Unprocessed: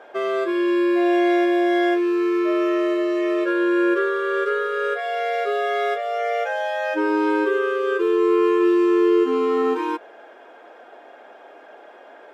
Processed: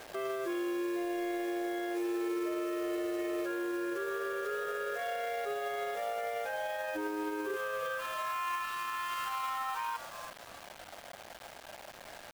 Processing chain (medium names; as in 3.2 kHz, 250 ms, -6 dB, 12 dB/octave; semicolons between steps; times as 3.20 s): brick-wall FIR high-pass 170 Hz, from 7.55 s 500 Hz; frequency-shifting echo 340 ms, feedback 32%, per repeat +110 Hz, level -15.5 dB; compression 8:1, threshold -23 dBFS, peak gain reduction 8 dB; bit crusher 7-bit; crossover distortion -43.5 dBFS; peak limiter -28 dBFS, peak gain reduction 11.5 dB